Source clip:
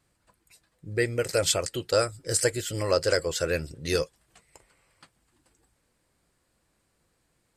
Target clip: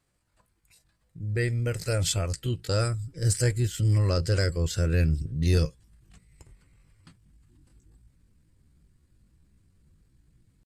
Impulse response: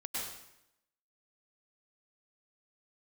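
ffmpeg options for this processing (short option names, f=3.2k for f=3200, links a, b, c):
-af "asubboost=boost=11.5:cutoff=190,acontrast=36,atempo=0.71,volume=-9dB"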